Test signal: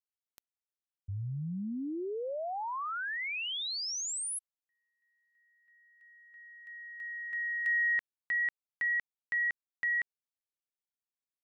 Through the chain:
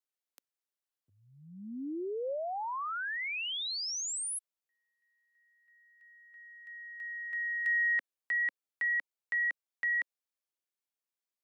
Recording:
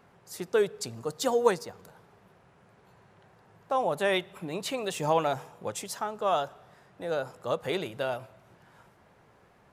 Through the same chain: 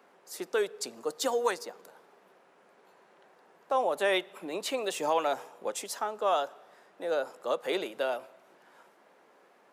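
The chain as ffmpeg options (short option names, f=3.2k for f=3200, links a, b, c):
-filter_complex "[0:a]highpass=f=260:w=0.5412,highpass=f=260:w=1.3066,equalizer=f=540:t=o:w=0.28:g=2,acrossover=split=860[a][b];[a]alimiter=limit=-22dB:level=0:latency=1:release=208[c];[c][b]amix=inputs=2:normalize=0"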